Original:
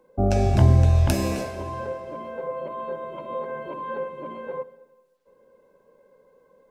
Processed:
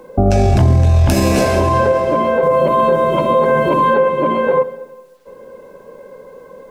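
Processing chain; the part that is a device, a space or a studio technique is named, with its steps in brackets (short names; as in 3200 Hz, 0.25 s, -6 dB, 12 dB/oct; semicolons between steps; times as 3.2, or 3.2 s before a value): 2.43–3.94 tone controls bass +6 dB, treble +9 dB; loud club master (compressor 1.5:1, threshold -22 dBFS, peak gain reduction 4.5 dB; hard clip -12.5 dBFS, distortion -30 dB; maximiser +24.5 dB); gain -4 dB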